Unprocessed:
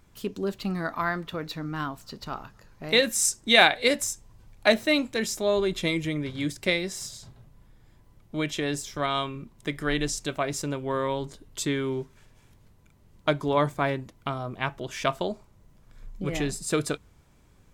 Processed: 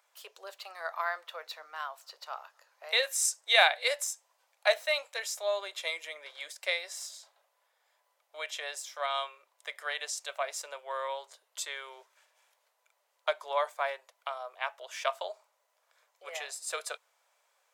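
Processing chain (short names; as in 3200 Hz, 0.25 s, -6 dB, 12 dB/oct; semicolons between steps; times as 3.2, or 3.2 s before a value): steep high-pass 540 Hz 48 dB/oct; gain -4.5 dB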